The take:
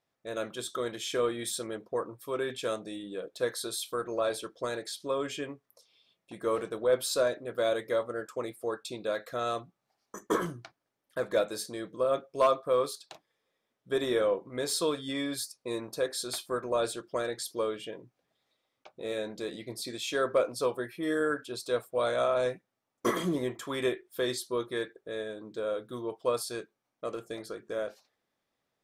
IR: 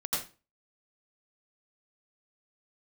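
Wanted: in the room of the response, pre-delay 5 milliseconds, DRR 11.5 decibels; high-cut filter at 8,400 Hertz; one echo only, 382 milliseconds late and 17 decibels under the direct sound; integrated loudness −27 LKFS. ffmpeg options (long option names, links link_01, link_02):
-filter_complex "[0:a]lowpass=8400,aecho=1:1:382:0.141,asplit=2[link_01][link_02];[1:a]atrim=start_sample=2205,adelay=5[link_03];[link_02][link_03]afir=irnorm=-1:irlink=0,volume=-17.5dB[link_04];[link_01][link_04]amix=inputs=2:normalize=0,volume=5.5dB"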